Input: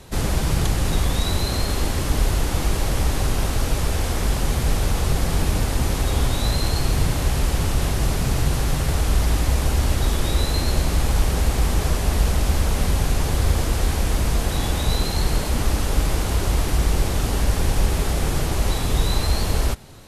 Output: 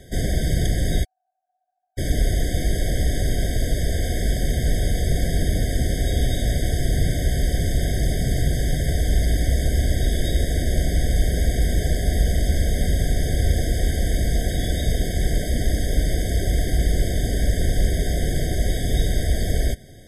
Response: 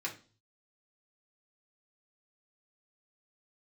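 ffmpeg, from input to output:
-filter_complex "[0:a]asplit=3[a][b][c];[a]afade=t=out:st=1.03:d=0.02[d];[b]asuperpass=centerf=990:order=12:qfactor=3,afade=t=in:st=1.03:d=0.02,afade=t=out:st=1.97:d=0.02[e];[c]afade=t=in:st=1.97:d=0.02[f];[d][e][f]amix=inputs=3:normalize=0,afftfilt=real='re*eq(mod(floor(b*sr/1024/760),2),0)':imag='im*eq(mod(floor(b*sr/1024/760),2),0)':win_size=1024:overlap=0.75"

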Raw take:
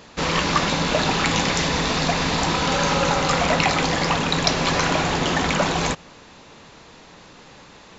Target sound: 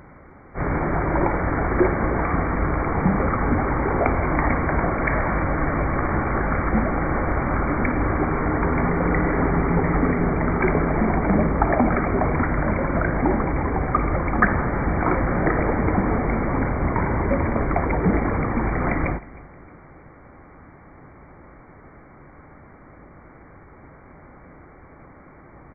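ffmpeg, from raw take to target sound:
-af "asetrate=13671,aresample=44100,aecho=1:1:312|624|936:0.0841|0.032|0.0121"

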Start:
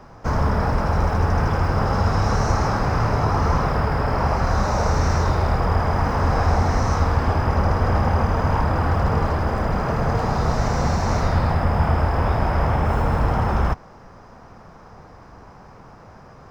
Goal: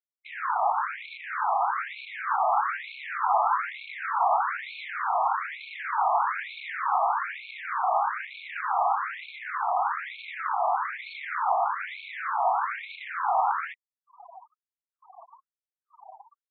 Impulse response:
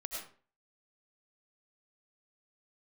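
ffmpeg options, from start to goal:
-filter_complex "[0:a]afftfilt=real='re*gte(hypot(re,im),0.02)':imag='im*gte(hypot(re,im),0.02)':win_size=1024:overlap=0.75,highpass=f=690:t=q:w=3.4,acrossover=split=960[a][b];[a]volume=27dB,asoftclip=hard,volume=-27dB[c];[c][b]amix=inputs=2:normalize=0,afftfilt=real='re*between(b*sr/1024,890*pow(3100/890,0.5+0.5*sin(2*PI*1.1*pts/sr))/1.41,890*pow(3100/890,0.5+0.5*sin(2*PI*1.1*pts/sr))*1.41)':imag='im*between(b*sr/1024,890*pow(3100/890,0.5+0.5*sin(2*PI*1.1*pts/sr))/1.41,890*pow(3100/890,0.5+0.5*sin(2*PI*1.1*pts/sr))*1.41)':win_size=1024:overlap=0.75"

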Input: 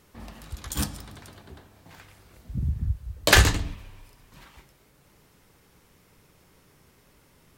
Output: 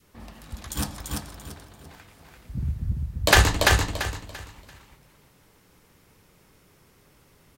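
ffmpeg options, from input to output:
-filter_complex "[0:a]asplit=2[a][b];[b]aecho=0:1:340|680|1020|1360:0.708|0.205|0.0595|0.0173[c];[a][c]amix=inputs=2:normalize=0,adynamicequalizer=threshold=0.00891:dfrequency=820:dqfactor=1.2:tfrequency=820:tqfactor=1.2:attack=5:release=100:ratio=0.375:range=2.5:mode=boostabove:tftype=bell,volume=-1dB"

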